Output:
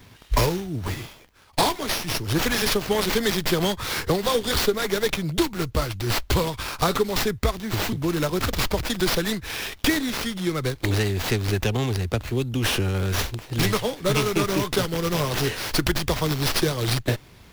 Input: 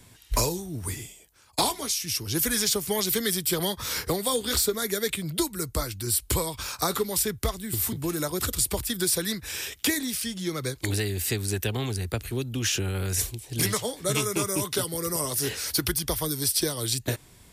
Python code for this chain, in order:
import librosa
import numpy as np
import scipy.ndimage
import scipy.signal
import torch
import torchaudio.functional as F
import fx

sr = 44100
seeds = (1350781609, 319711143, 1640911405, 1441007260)

y = fx.running_max(x, sr, window=5)
y = y * librosa.db_to_amplitude(5.0)